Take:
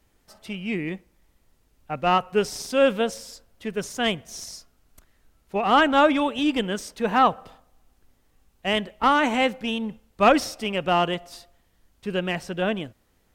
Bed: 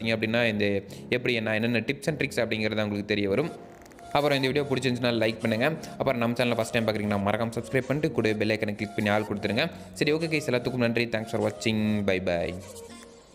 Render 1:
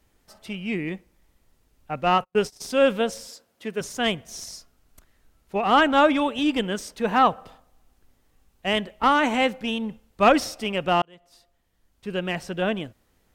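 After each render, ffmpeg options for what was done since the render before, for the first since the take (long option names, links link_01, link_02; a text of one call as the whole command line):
ffmpeg -i in.wav -filter_complex "[0:a]asplit=3[link_01][link_02][link_03];[link_01]afade=type=out:start_time=2.03:duration=0.02[link_04];[link_02]agate=range=-39dB:threshold=-33dB:ratio=16:release=100:detection=peak,afade=type=in:start_time=2.03:duration=0.02,afade=type=out:start_time=2.6:duration=0.02[link_05];[link_03]afade=type=in:start_time=2.6:duration=0.02[link_06];[link_04][link_05][link_06]amix=inputs=3:normalize=0,asettb=1/sr,asplit=3[link_07][link_08][link_09];[link_07]atrim=end=3.284[link_10];[link_08]atrim=start=3.28:end=3.81,asetpts=PTS-STARTPTS,afade=type=in:duration=0.004:curve=qsin,afade=type=out:start_time=0.526:duration=0.004:curve=qsin,highpass=190[link_11];[link_09]atrim=start=3.806[link_12];[link_10][link_11]acrossfade=duration=0.004:curve1=hsin:curve2=qsin[link_13];[link_13][link_12]acrossfade=duration=0.004:curve1=qsin:curve2=hsin,asplit=2[link_14][link_15];[link_14]atrim=end=11.02,asetpts=PTS-STARTPTS,afade=type=out:start_time=11.016:duration=0.004:curve=hsin[link_16];[link_15]atrim=start=11.02,asetpts=PTS-STARTPTS,afade=type=in:duration=1.42[link_17];[link_16][link_17]concat=n=2:v=0:a=1" out.wav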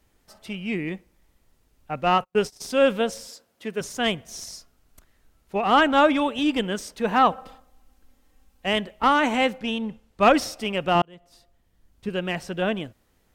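ffmpeg -i in.wav -filter_complex "[0:a]asettb=1/sr,asplit=3[link_01][link_02][link_03];[link_01]atrim=end=7.314[link_04];[link_02]atrim=start=7.31:end=8.66,asetpts=PTS-STARTPTS,afade=type=in:duration=0.004:curve=qsin,afade=type=out:start_time=1.346:duration=0.004:curve=qsin,aecho=1:1:3.8:0.65,atrim=end_sample=59535[link_05];[link_03]atrim=start=8.656[link_06];[link_04][link_05]acrossfade=duration=0.004:curve1=hsin:curve2=qsin[link_07];[link_07][link_06]acrossfade=duration=0.004:curve1=qsin:curve2=hsin,asettb=1/sr,asplit=3[link_08][link_09][link_10];[link_08]atrim=end=9.584[link_11];[link_09]atrim=start=9.58:end=10.23,asetpts=PTS-STARTPTS,afade=type=in:duration=0.004:curve=qsin,afade=type=out:start_time=0.646:duration=0.004:curve=qsin,highshelf=frequency=12000:gain=-11[link_12];[link_10]atrim=start=10.226[link_13];[link_11][link_12]acrossfade=duration=0.004:curve1=hsin:curve2=qsin[link_14];[link_14][link_13]acrossfade=duration=0.004:curve1=qsin:curve2=hsin,asettb=1/sr,asplit=3[link_15][link_16][link_17];[link_15]atrim=end=10.954[link_18];[link_16]atrim=start=10.95:end=12.09,asetpts=PTS-STARTPTS,afade=type=in:duration=0.004:curve=qsin,afade=type=out:start_time=1.136:duration=0.004:curve=qsin,lowshelf=frequency=350:gain=7[link_19];[link_17]atrim=start=12.086[link_20];[link_18][link_19]acrossfade=duration=0.004:curve1=hsin:curve2=qsin[link_21];[link_21][link_20]acrossfade=duration=0.004:curve1=qsin:curve2=hsin" out.wav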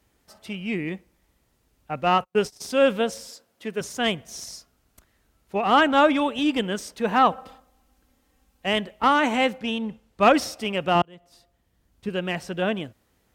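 ffmpeg -i in.wav -af "highpass=46" out.wav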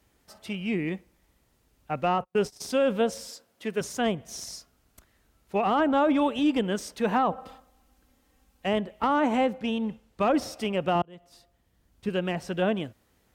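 ffmpeg -i in.wav -filter_complex "[0:a]acrossover=split=1100[link_01][link_02];[link_01]alimiter=limit=-16.5dB:level=0:latency=1:release=24[link_03];[link_02]acompressor=threshold=-34dB:ratio=12[link_04];[link_03][link_04]amix=inputs=2:normalize=0" out.wav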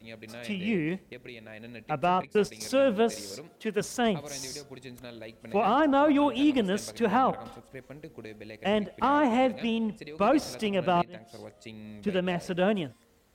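ffmpeg -i in.wav -i bed.wav -filter_complex "[1:a]volume=-18.5dB[link_01];[0:a][link_01]amix=inputs=2:normalize=0" out.wav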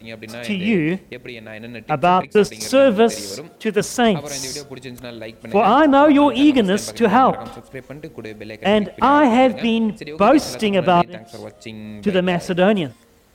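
ffmpeg -i in.wav -af "volume=10.5dB" out.wav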